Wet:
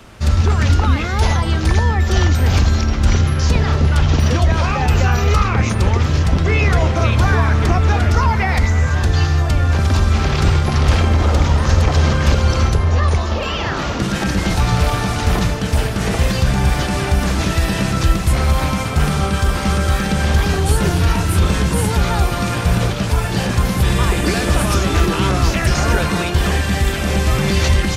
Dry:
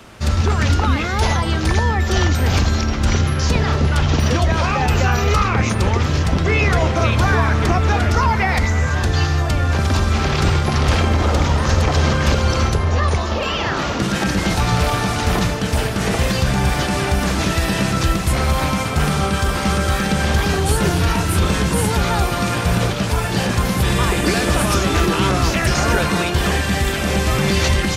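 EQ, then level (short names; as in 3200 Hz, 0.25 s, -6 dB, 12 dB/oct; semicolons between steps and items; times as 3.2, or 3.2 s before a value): low shelf 85 Hz +8 dB; -1.0 dB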